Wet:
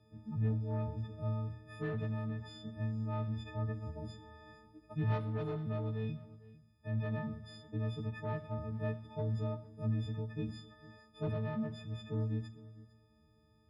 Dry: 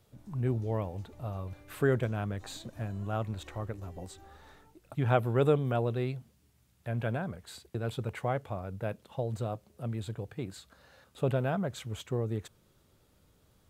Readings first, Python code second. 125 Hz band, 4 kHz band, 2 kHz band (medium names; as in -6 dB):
-2.5 dB, -7.0 dB, -8.5 dB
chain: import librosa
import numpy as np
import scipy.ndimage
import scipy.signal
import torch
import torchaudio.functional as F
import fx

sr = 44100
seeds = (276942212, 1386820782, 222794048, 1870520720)

p1 = fx.freq_snap(x, sr, grid_st=6)
p2 = fx.notch(p1, sr, hz=2200.0, q=6.7)
p3 = 10.0 ** (-22.5 / 20.0) * np.tanh(p2 / 10.0 ** (-22.5 / 20.0))
p4 = fx.dynamic_eq(p3, sr, hz=420.0, q=1.0, threshold_db=-46.0, ratio=4.0, max_db=-4)
p5 = scipy.signal.sosfilt(scipy.signal.butter(2, 51.0, 'highpass', fs=sr, output='sos'), p4)
p6 = fx.rider(p5, sr, range_db=3, speed_s=0.5)
p7 = scipy.signal.savgol_filter(p6, 15, 4, mode='constant')
p8 = fx.tilt_shelf(p7, sr, db=7.5, hz=740.0)
p9 = p8 + fx.echo_single(p8, sr, ms=453, db=-19.0, dry=0)
p10 = fx.rev_fdn(p9, sr, rt60_s=0.77, lf_ratio=1.0, hf_ratio=0.95, size_ms=27.0, drr_db=8.0)
y = p10 * librosa.db_to_amplitude(-8.0)